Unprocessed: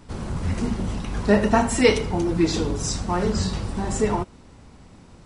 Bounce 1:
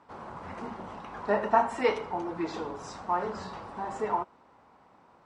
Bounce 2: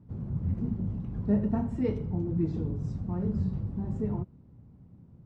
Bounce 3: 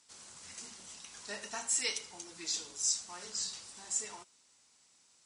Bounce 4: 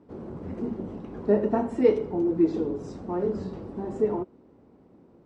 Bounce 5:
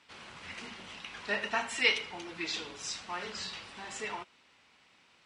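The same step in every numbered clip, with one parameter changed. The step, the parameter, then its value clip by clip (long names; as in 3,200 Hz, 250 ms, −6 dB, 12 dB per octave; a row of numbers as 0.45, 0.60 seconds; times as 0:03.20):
resonant band-pass, frequency: 950, 130, 7,200, 370, 2,700 Hertz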